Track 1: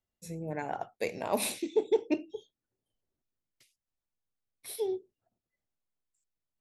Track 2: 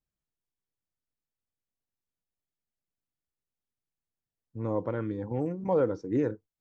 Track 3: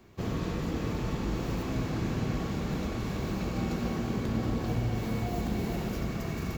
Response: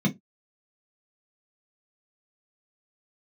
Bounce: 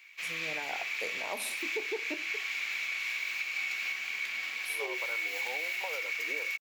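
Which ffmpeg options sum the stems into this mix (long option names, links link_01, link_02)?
-filter_complex "[0:a]highpass=frequency=810:poles=1,volume=0.5dB[link_01];[1:a]highpass=frequency=630:width=0.5412,highpass=frequency=630:width=1.3066,acompressor=threshold=-39dB:ratio=6,adelay=150,volume=2dB[link_02];[2:a]highpass=frequency=2300:width_type=q:width=6.8,volume=2.5dB[link_03];[link_01][link_02][link_03]amix=inputs=3:normalize=0,alimiter=level_in=0.5dB:limit=-24dB:level=0:latency=1:release=195,volume=-0.5dB"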